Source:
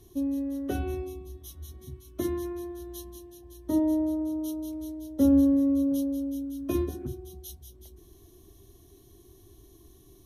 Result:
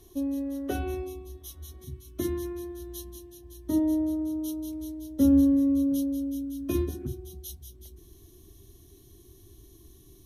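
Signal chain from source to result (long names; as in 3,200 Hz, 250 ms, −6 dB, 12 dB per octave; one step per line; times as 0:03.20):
parametric band 140 Hz −7.5 dB 1.8 octaves, from 0:01.84 740 Hz
level +2.5 dB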